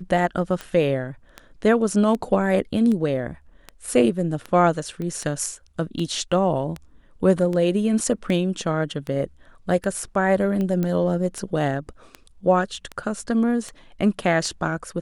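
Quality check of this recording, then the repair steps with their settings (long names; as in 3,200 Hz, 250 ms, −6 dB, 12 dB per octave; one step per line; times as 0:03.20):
scratch tick 78 rpm −17 dBFS
0:05.02: click −21 dBFS
0:10.83: click −14 dBFS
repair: click removal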